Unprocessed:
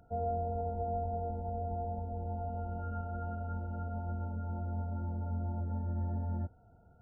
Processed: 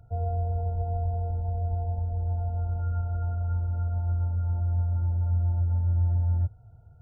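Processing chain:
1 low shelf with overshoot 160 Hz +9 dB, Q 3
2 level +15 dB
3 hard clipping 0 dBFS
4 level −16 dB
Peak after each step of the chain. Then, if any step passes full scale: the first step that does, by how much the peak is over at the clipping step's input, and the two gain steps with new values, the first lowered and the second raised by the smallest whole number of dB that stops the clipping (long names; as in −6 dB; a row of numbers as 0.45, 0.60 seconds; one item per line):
−17.0, −2.0, −2.0, −18.0 dBFS
no step passes full scale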